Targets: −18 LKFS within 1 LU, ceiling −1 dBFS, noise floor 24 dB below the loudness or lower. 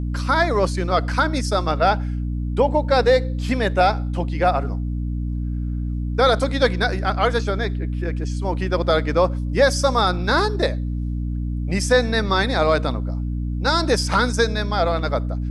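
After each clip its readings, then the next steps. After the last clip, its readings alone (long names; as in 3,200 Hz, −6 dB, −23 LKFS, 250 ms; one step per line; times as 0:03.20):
mains hum 60 Hz; hum harmonics up to 300 Hz; level of the hum −22 dBFS; integrated loudness −21.0 LKFS; sample peak −5.0 dBFS; target loudness −18.0 LKFS
→ hum removal 60 Hz, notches 5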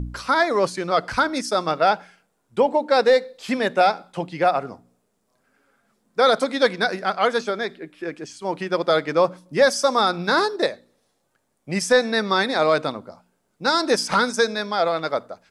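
mains hum none found; integrated loudness −21.0 LKFS; sample peak −6.5 dBFS; target loudness −18.0 LKFS
→ level +3 dB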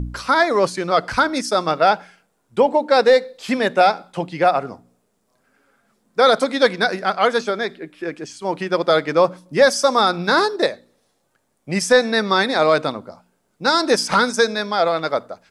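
integrated loudness −18.0 LKFS; sample peak −3.5 dBFS; background noise floor −68 dBFS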